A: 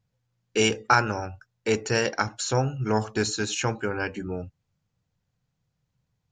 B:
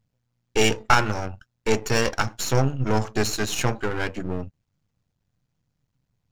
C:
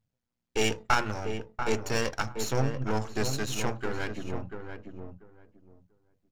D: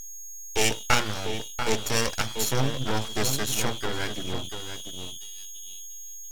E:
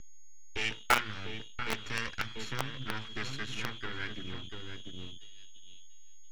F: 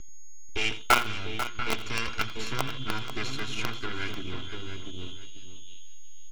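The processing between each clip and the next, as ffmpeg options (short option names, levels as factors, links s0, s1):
-filter_complex "[0:a]aeval=exprs='if(lt(val(0),0),0.251*val(0),val(0))':c=same,lowshelf=f=190:g=3,asplit=2[s0][s1];[s1]aeval=exprs='sgn(val(0))*max(abs(val(0))-0.00944,0)':c=same,volume=0.355[s2];[s0][s2]amix=inputs=2:normalize=0,volume=1.41"
-filter_complex "[0:a]bandreject=f=60:t=h:w=6,bandreject=f=120:t=h:w=6,bandreject=f=180:t=h:w=6,asplit=2[s0][s1];[s1]adelay=689,lowpass=f=1200:p=1,volume=0.501,asplit=2[s2][s3];[s3]adelay=689,lowpass=f=1200:p=1,volume=0.2,asplit=2[s4][s5];[s5]adelay=689,lowpass=f=1200:p=1,volume=0.2[s6];[s2][s4][s6]amix=inputs=3:normalize=0[s7];[s0][s7]amix=inputs=2:normalize=0,volume=0.447"
-af "aeval=exprs='val(0)+0.00891*sin(2*PI*3300*n/s)':c=same,aeval=exprs='abs(val(0))':c=same,aemphasis=mode=production:type=cd,volume=1.41"
-filter_complex "[0:a]lowpass=2100,acrossover=split=460|1300[s0][s1][s2];[s0]acompressor=threshold=0.0158:ratio=5[s3];[s1]acrusher=bits=3:mix=0:aa=0.000001[s4];[s3][s4][s2]amix=inputs=3:normalize=0"
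-af "bandreject=f=1800:w=5.2,aecho=1:1:2.9:0.32,aecho=1:1:85|491:0.158|0.266,volume=1.78"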